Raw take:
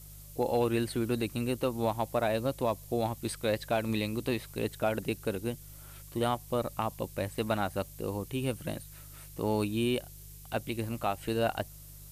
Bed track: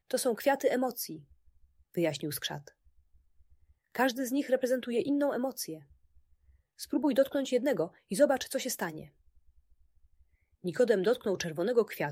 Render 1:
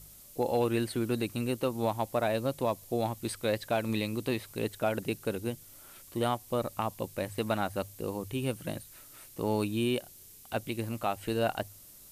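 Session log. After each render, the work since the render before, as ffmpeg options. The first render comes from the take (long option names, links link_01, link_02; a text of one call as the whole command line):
ffmpeg -i in.wav -af "bandreject=frequency=50:width_type=h:width=4,bandreject=frequency=100:width_type=h:width=4,bandreject=frequency=150:width_type=h:width=4" out.wav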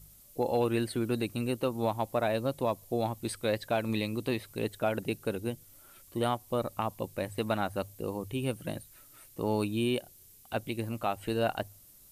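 ffmpeg -i in.wav -af "afftdn=noise_reduction=6:noise_floor=-53" out.wav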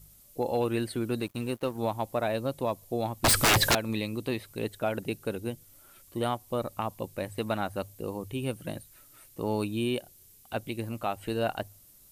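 ffmpeg -i in.wav -filter_complex "[0:a]asettb=1/sr,asplit=3[link_01][link_02][link_03];[link_01]atrim=end=1.204[link_04];[link_02]atrim=start=1.2:end=1.78,asetpts=PTS-STARTPTS,afade=type=in:duration=0.004:curve=qsin,afade=type=out:start_time=0.576:duration=0.004:curve=qsin,aeval=exprs='sgn(val(0))*max(abs(val(0))-0.00398,0)':channel_layout=same[link_05];[link_03]atrim=start=1.776[link_06];[link_04][link_05]acrossfade=duration=0.004:curve1=hsin:curve2=qsin[link_07];[link_07][link_06]acrossfade=duration=0.004:curve1=qsin:curve2=hsin,asettb=1/sr,asplit=3[link_08][link_09][link_10];[link_08]atrim=end=3.244[link_11];[link_09]atrim=start=3.24:end=3.75,asetpts=PTS-STARTPTS,afade=type=in:duration=0.004:curve=qsin,afade=type=out:start_time=0.506:duration=0.004:curve=qsin,aeval=exprs='0.133*sin(PI/2*8.91*val(0)/0.133)':channel_layout=same[link_12];[link_10]atrim=start=3.746[link_13];[link_11][link_12]acrossfade=duration=0.004:curve1=hsin:curve2=qsin[link_14];[link_14][link_13]acrossfade=duration=0.004:curve1=qsin:curve2=hsin" out.wav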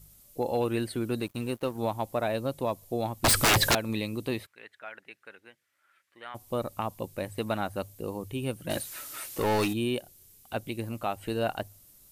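ffmpeg -i in.wav -filter_complex "[0:a]asplit=3[link_01][link_02][link_03];[link_01]afade=type=out:start_time=4.45:duration=0.02[link_04];[link_02]bandpass=frequency=1800:width_type=q:width=2.8,afade=type=in:start_time=4.45:duration=0.02,afade=type=out:start_time=6.34:duration=0.02[link_05];[link_03]afade=type=in:start_time=6.34:duration=0.02[link_06];[link_04][link_05][link_06]amix=inputs=3:normalize=0,asplit=3[link_07][link_08][link_09];[link_07]afade=type=out:start_time=8.69:duration=0.02[link_10];[link_08]asplit=2[link_11][link_12];[link_12]highpass=frequency=720:poles=1,volume=24dB,asoftclip=type=tanh:threshold=-18.5dB[link_13];[link_11][link_13]amix=inputs=2:normalize=0,lowpass=frequency=7700:poles=1,volume=-6dB,afade=type=in:start_time=8.69:duration=0.02,afade=type=out:start_time=9.72:duration=0.02[link_14];[link_09]afade=type=in:start_time=9.72:duration=0.02[link_15];[link_10][link_14][link_15]amix=inputs=3:normalize=0" out.wav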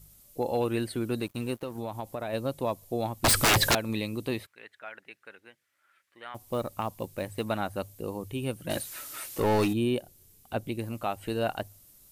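ffmpeg -i in.wav -filter_complex "[0:a]asplit=3[link_01][link_02][link_03];[link_01]afade=type=out:start_time=1.59:duration=0.02[link_04];[link_02]acompressor=threshold=-30dB:ratio=6:attack=3.2:release=140:knee=1:detection=peak,afade=type=in:start_time=1.59:duration=0.02,afade=type=out:start_time=2.32:duration=0.02[link_05];[link_03]afade=type=in:start_time=2.32:duration=0.02[link_06];[link_04][link_05][link_06]amix=inputs=3:normalize=0,asettb=1/sr,asplit=3[link_07][link_08][link_09];[link_07]atrim=end=6.344[link_10];[link_08]atrim=start=6.34:end=7.43,asetpts=PTS-STARTPTS,afade=type=in:duration=0.004:curve=qsin,afade=type=out:start_time=1.086:duration=0.004:curve=qsin,acrusher=bits=7:mode=log:mix=0:aa=0.000001[link_11];[link_09]atrim=start=7.426[link_12];[link_10][link_11]acrossfade=duration=0.004:curve1=hsin:curve2=qsin[link_13];[link_13][link_12]acrossfade=duration=0.004:curve1=qsin:curve2=hsin,asettb=1/sr,asplit=3[link_14][link_15][link_16];[link_14]atrim=end=9.404[link_17];[link_15]atrim=start=9.4:end=10.79,asetpts=PTS-STARTPTS,afade=type=in:duration=0.004:curve=qsin,afade=type=out:start_time=1.386:duration=0.004:curve=qsin,tiltshelf=frequency=970:gain=3[link_18];[link_16]atrim=start=10.786[link_19];[link_17][link_18]acrossfade=duration=0.004:curve1=hsin:curve2=qsin[link_20];[link_20][link_19]acrossfade=duration=0.004:curve1=qsin:curve2=hsin" out.wav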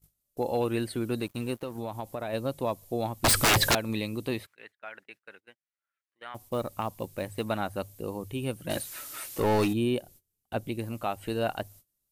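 ffmpeg -i in.wav -af "agate=range=-24dB:threshold=-51dB:ratio=16:detection=peak" out.wav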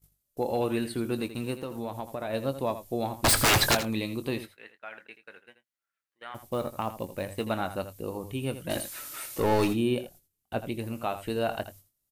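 ffmpeg -i in.wav -filter_complex "[0:a]asplit=2[link_01][link_02];[link_02]adelay=22,volume=-12.5dB[link_03];[link_01][link_03]amix=inputs=2:normalize=0,aecho=1:1:82:0.251" out.wav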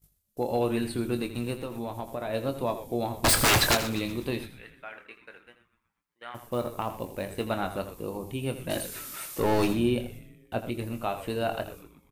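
ffmpeg -i in.wav -filter_complex "[0:a]asplit=2[link_01][link_02];[link_02]adelay=25,volume=-11dB[link_03];[link_01][link_03]amix=inputs=2:normalize=0,asplit=6[link_04][link_05][link_06][link_07][link_08][link_09];[link_05]adelay=123,afreqshift=-130,volume=-15dB[link_10];[link_06]adelay=246,afreqshift=-260,volume=-21dB[link_11];[link_07]adelay=369,afreqshift=-390,volume=-27dB[link_12];[link_08]adelay=492,afreqshift=-520,volume=-33.1dB[link_13];[link_09]adelay=615,afreqshift=-650,volume=-39.1dB[link_14];[link_04][link_10][link_11][link_12][link_13][link_14]amix=inputs=6:normalize=0" out.wav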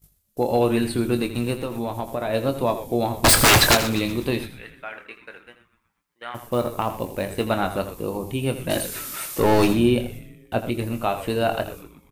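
ffmpeg -i in.wav -af "volume=7dB" out.wav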